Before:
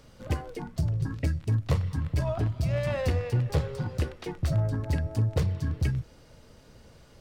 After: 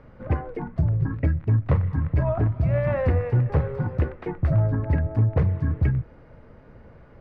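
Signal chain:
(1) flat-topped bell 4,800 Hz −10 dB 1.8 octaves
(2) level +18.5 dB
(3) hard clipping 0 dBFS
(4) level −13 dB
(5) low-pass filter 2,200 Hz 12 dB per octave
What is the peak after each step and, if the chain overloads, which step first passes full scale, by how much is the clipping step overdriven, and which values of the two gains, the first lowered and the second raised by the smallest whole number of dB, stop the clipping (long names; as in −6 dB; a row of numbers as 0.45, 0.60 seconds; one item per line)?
−13.5, +5.0, 0.0, −13.0, −13.0 dBFS
step 2, 5.0 dB
step 2 +13.5 dB, step 4 −8 dB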